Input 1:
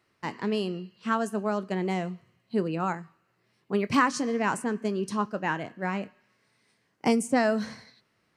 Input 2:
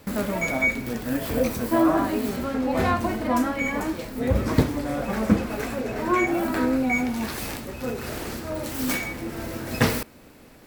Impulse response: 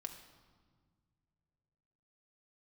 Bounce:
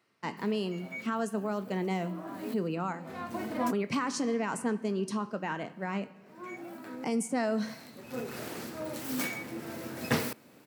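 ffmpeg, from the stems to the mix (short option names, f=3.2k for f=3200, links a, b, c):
-filter_complex "[0:a]bandreject=f=1.7k:w=20,alimiter=limit=-20.5dB:level=0:latency=1:release=43,volume=-4.5dB,asplit=3[a][b][c];[b]volume=-4.5dB[d];[1:a]adelay=300,volume=5dB,afade=t=out:st=3.91:d=0.49:silence=0.251189,afade=t=in:st=6.98:d=0.66:silence=0.237137[e];[c]apad=whole_len=483635[f];[e][f]sidechaincompress=threshold=-55dB:ratio=6:attack=42:release=351[g];[2:a]atrim=start_sample=2205[h];[d][h]afir=irnorm=-1:irlink=0[i];[a][g][i]amix=inputs=3:normalize=0,highpass=f=120:w=0.5412,highpass=f=120:w=1.3066"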